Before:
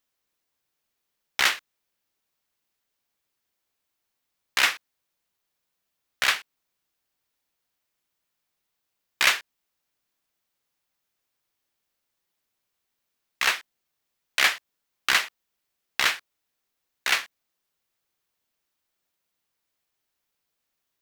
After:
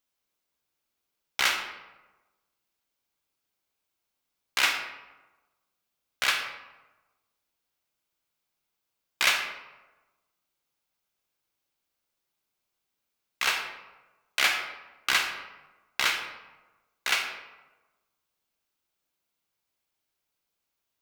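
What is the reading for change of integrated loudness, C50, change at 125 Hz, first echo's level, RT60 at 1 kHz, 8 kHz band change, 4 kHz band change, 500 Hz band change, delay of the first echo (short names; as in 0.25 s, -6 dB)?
-3.0 dB, 6.0 dB, n/a, none, 1.1 s, -2.5 dB, -2.0 dB, -1.5 dB, none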